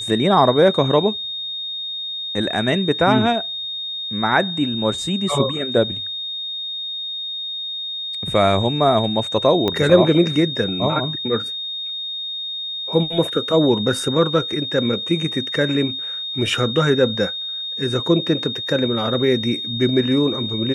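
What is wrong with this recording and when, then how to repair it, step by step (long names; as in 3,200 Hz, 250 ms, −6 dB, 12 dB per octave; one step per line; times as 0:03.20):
whistle 3,700 Hz −25 dBFS
0:09.68: click −8 dBFS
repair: click removal
notch filter 3,700 Hz, Q 30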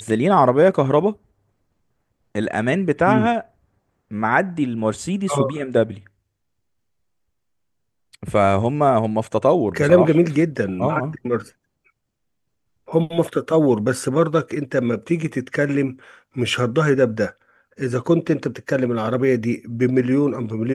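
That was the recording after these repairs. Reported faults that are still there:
0:09.68: click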